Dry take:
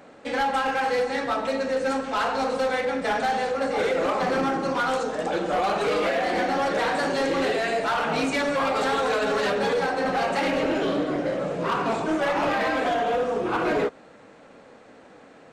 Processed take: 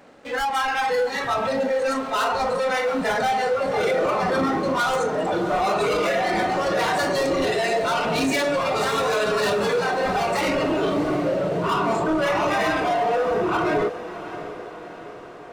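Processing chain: 7.24–8.81 bell 1200 Hz -4.5 dB 0.98 oct; sample leveller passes 3; spectral noise reduction 12 dB; on a send: diffused feedback echo 0.688 s, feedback 57%, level -13 dB

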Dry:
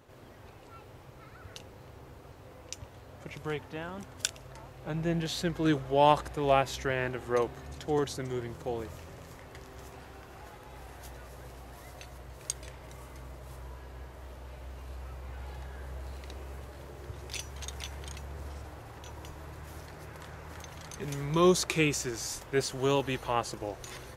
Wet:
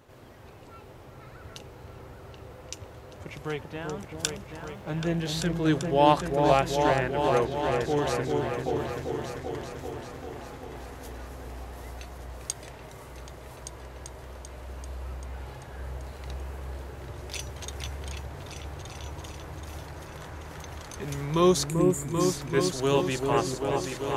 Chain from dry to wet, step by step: 4.51–5.29 requantised 12-bit, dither none; 21.69–22.2 spectral gain 360–6700 Hz -25 dB; repeats that get brighter 0.39 s, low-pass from 750 Hz, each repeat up 2 oct, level -3 dB; gain +2 dB

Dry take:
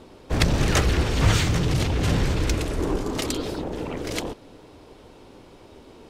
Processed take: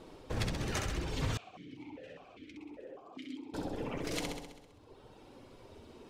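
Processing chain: reverb removal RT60 1.7 s; compressor 4:1, threshold -28 dBFS, peak gain reduction 11.5 dB; flange 0.97 Hz, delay 6 ms, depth 4 ms, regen -39%; flutter echo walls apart 11.2 m, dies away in 0.93 s; 1.37–3.54 vowel sequencer 5 Hz; gain -2 dB

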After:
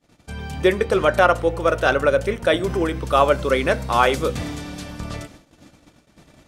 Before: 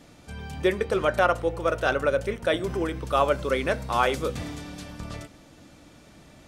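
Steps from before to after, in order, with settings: gate -49 dBFS, range -28 dB; gain +6 dB

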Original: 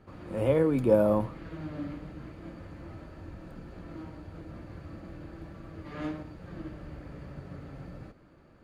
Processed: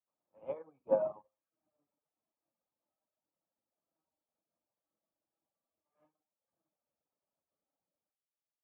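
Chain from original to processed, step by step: octaver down 1 oct, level +4 dB; speaker cabinet 370–2600 Hz, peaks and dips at 370 Hz -6 dB, 610 Hz +4 dB, 860 Hz +8 dB, 1200 Hz +3 dB, 1900 Hz -9 dB; notch 1400 Hz, Q 11; reverb RT60 0.60 s, pre-delay 42 ms, DRR 6.5 dB; reverb removal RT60 0.94 s; bell 650 Hz +3 dB 0.37 oct; upward expander 2.5:1, over -41 dBFS; gain -7.5 dB

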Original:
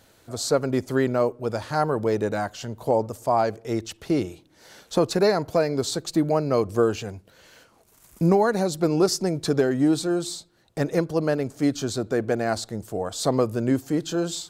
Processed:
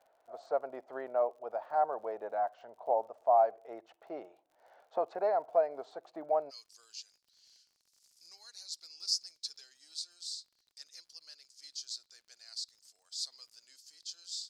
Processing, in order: ladder band-pass 770 Hz, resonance 65%, from 6.49 s 5300 Hz; crackle 51/s -57 dBFS

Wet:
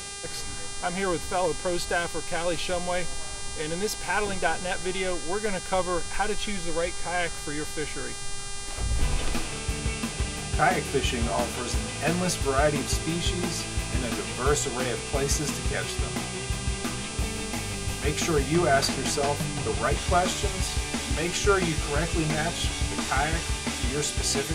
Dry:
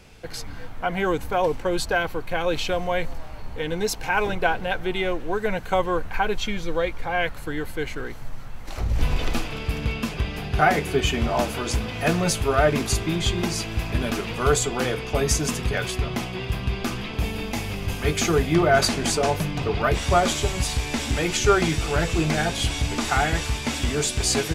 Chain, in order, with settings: reverse; upward compressor, threshold -26 dBFS; reverse; buzz 400 Hz, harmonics 26, -34 dBFS 0 dB/oct; gain -4 dB

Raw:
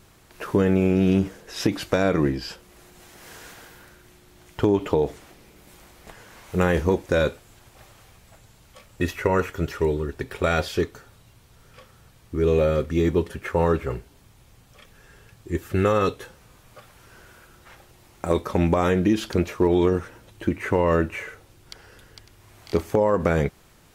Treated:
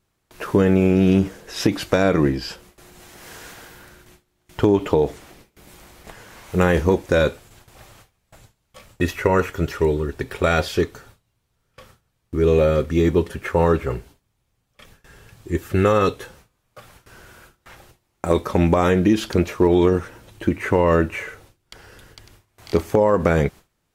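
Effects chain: gate with hold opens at -40 dBFS; gain +3.5 dB

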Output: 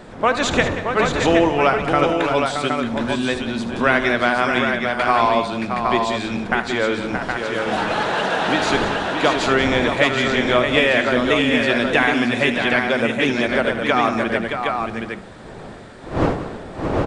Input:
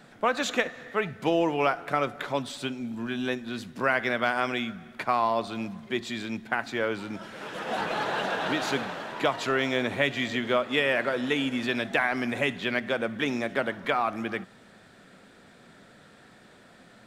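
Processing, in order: wind noise 580 Hz -40 dBFS; tapped delay 75/184/623/768 ms -12.5/-12.5/-7/-5 dB; downsampling 22050 Hz; gain +7.5 dB

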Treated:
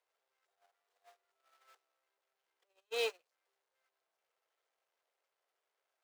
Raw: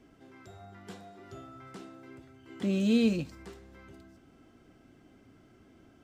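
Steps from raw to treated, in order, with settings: zero-crossing step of -30.5 dBFS; steep high-pass 450 Hz 48 dB/oct; high shelf 6900 Hz -4 dB; gate -32 dBFS, range -46 dB

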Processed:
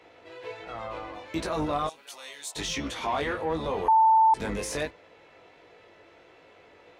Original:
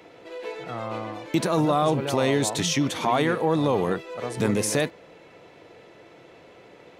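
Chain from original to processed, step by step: octaver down 2 oct, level -1 dB; 1.87–2.56 differentiator; chorus 1.4 Hz, delay 18.5 ms, depth 2.3 ms; overdrive pedal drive 13 dB, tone 4100 Hz, clips at -10.5 dBFS; 3.88–4.34 bleep 888 Hz -8.5 dBFS; gain -7 dB

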